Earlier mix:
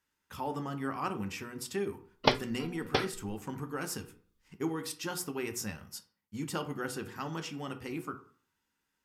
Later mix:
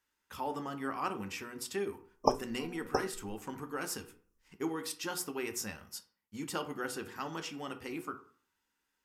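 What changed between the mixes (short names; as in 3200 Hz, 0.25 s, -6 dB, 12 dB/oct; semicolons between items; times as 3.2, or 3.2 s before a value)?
background: add brick-wall FIR band-stop 1200–5100 Hz; master: add bell 130 Hz -9 dB 1.4 oct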